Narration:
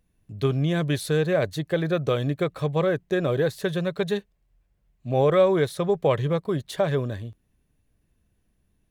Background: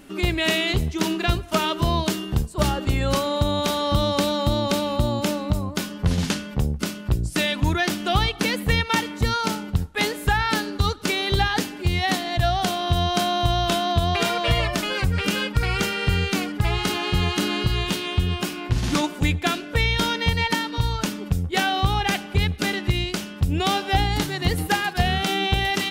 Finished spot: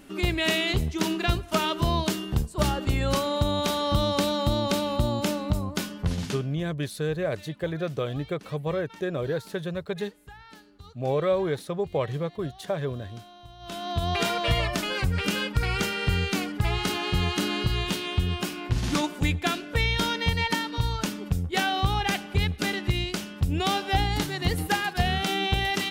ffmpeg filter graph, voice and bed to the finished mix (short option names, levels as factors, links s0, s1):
-filter_complex "[0:a]adelay=5900,volume=0.531[s0];[1:a]volume=10,afade=t=out:st=5.85:d=0.78:silence=0.0668344,afade=t=in:st=13.59:d=0.6:silence=0.0707946[s1];[s0][s1]amix=inputs=2:normalize=0"